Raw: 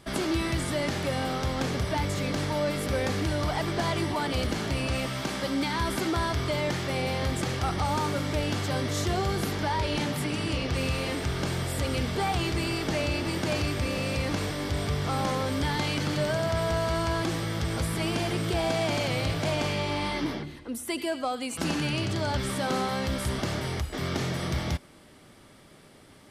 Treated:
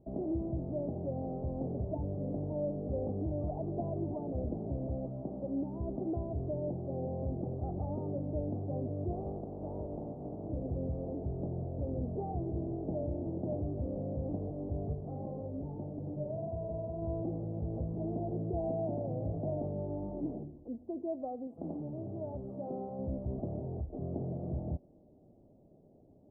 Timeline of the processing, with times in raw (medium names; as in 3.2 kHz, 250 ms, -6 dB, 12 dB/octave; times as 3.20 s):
6.22–6.78 s: low-pass 1.2 kHz
9.11–10.49 s: spectral contrast reduction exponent 0.41
14.93–17.02 s: flange 1.8 Hz, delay 1 ms, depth 9 ms, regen -46%
21.47–22.99 s: tilt EQ +2 dB/octave
whole clip: elliptic low-pass 700 Hz, stop band 60 dB; trim -6 dB